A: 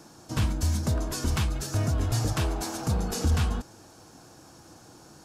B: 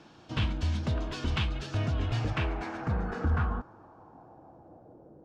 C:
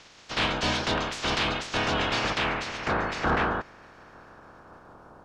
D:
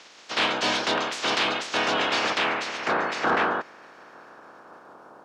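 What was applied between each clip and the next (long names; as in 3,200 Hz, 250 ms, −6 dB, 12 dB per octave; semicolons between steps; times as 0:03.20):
low-pass filter sweep 3,100 Hz → 510 Hz, 0:01.97–0:05.20; level −3.5 dB
ceiling on every frequency bin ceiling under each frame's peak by 30 dB; soft clipping −20 dBFS, distortion −20 dB; high-frequency loss of the air 56 metres; level +4 dB
high-pass filter 280 Hz 12 dB per octave; level +3 dB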